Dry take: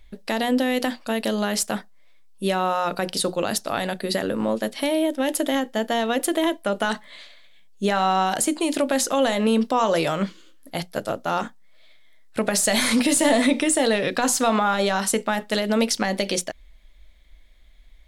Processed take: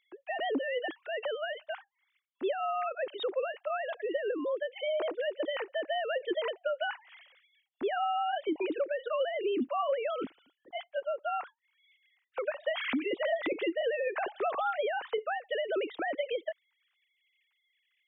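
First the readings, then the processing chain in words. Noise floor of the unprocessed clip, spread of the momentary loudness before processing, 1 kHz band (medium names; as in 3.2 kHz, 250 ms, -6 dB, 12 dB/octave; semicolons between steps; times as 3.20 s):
-48 dBFS, 9 LU, -10.0 dB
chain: formants replaced by sine waves; compression 6:1, threshold -20 dBFS, peak gain reduction 9.5 dB; trim -7.5 dB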